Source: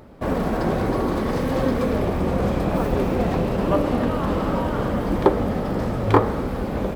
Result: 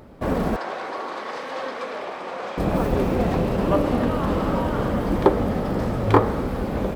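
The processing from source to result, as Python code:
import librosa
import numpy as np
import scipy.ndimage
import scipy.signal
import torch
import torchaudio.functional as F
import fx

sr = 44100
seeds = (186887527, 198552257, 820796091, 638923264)

y = fx.bandpass_edges(x, sr, low_hz=760.0, high_hz=5600.0, at=(0.56, 2.58))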